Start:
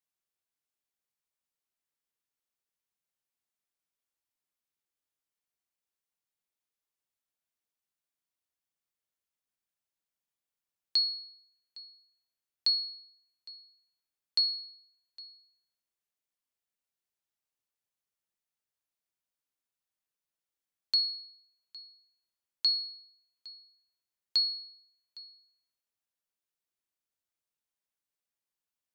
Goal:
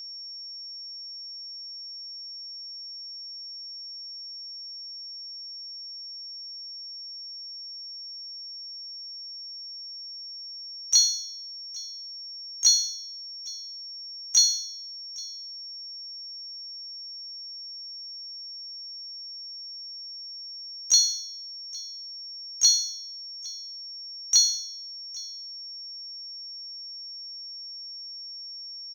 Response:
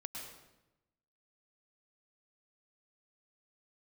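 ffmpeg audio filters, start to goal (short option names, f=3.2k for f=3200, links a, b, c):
-filter_complex "[0:a]acrusher=bits=6:mode=log:mix=0:aa=0.000001,asplit=4[a][b][c][d];[b]asetrate=35002,aresample=44100,atempo=1.25992,volume=-18dB[e];[c]asetrate=58866,aresample=44100,atempo=0.749154,volume=-1dB[f];[d]asetrate=66075,aresample=44100,atempo=0.66742,volume=-7dB[g];[a][e][f][g]amix=inputs=4:normalize=0,aeval=exprs='val(0)+0.00794*sin(2*PI*5500*n/s)':c=same,volume=5dB"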